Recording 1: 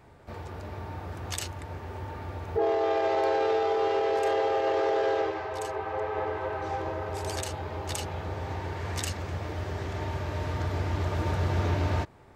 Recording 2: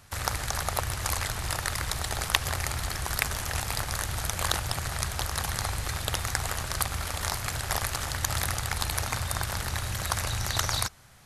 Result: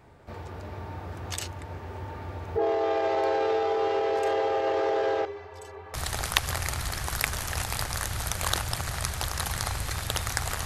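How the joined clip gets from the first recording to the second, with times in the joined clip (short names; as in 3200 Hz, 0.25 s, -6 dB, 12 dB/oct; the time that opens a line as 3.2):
recording 1
5.25–5.94 metallic resonator 84 Hz, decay 0.25 s, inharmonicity 0.03
5.94 switch to recording 2 from 1.92 s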